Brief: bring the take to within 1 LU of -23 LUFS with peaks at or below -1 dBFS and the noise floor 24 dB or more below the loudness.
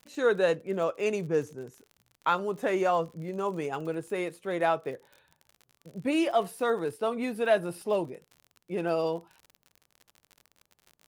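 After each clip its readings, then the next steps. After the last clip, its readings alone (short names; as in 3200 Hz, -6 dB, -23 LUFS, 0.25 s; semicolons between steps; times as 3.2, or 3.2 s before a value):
ticks 51/s; loudness -29.5 LUFS; peak -12.5 dBFS; loudness target -23.0 LUFS
-> de-click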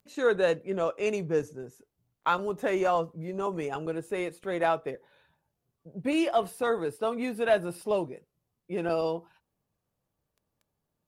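ticks 0.36/s; loudness -29.5 LUFS; peak -12.5 dBFS; loudness target -23.0 LUFS
-> gain +6.5 dB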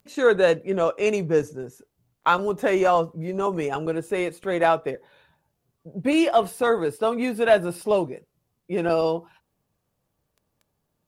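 loudness -23.0 LUFS; peak -6.0 dBFS; noise floor -77 dBFS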